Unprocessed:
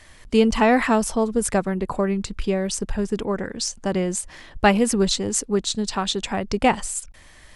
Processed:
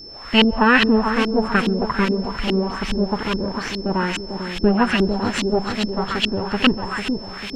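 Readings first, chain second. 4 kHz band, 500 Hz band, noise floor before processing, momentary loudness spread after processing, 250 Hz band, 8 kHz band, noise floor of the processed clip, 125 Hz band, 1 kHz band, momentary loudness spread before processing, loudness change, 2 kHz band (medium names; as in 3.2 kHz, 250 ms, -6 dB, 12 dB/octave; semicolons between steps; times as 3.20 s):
+5.5 dB, 0.0 dB, -48 dBFS, 10 LU, +3.5 dB, -13.0 dB, -34 dBFS, +3.0 dB, +1.5 dB, 8 LU, +2.5 dB, +6.5 dB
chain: comb filter that takes the minimum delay 0.69 ms; word length cut 6-bit, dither triangular; on a send: two-band feedback delay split 830 Hz, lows 448 ms, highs 135 ms, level -6.5 dB; on the sum: LFO low-pass saw up 2.4 Hz 280–3200 Hz; whistle 5.3 kHz -46 dBFS; treble shelf 2.2 kHz +11 dB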